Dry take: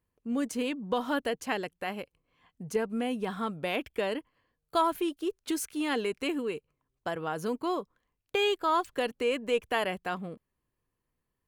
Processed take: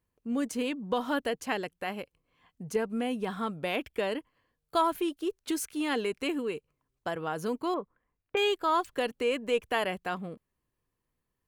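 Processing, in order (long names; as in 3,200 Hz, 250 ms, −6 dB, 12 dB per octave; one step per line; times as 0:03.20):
0:07.74–0:08.37: low-pass filter 2,300 Hz 24 dB per octave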